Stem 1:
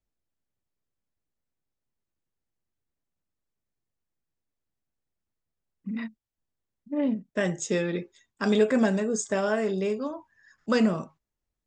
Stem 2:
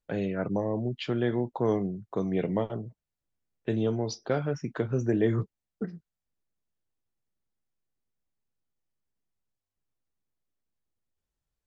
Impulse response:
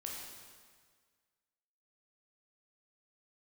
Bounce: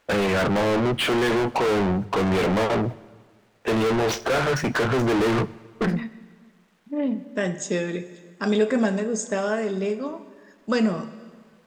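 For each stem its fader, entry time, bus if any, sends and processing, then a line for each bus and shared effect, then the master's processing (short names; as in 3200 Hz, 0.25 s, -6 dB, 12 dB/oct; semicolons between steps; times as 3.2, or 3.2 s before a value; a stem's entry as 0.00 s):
-0.5 dB, 0.00 s, send -8 dB, dry
-2.0 dB, 0.00 s, send -15.5 dB, median filter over 9 samples; overdrive pedal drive 41 dB, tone 4200 Hz, clips at -13.5 dBFS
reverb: on, RT60 1.7 s, pre-delay 13 ms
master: notches 50/100/150 Hz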